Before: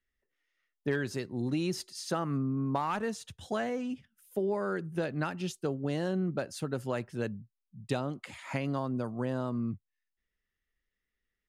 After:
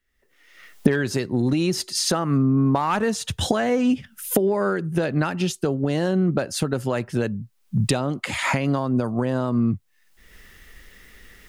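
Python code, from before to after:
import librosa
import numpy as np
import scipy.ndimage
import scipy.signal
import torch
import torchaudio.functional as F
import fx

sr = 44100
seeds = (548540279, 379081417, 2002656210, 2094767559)

y = fx.recorder_agc(x, sr, target_db=-21.5, rise_db_per_s=39.0, max_gain_db=30)
y = F.gain(torch.from_numpy(y), 8.0).numpy()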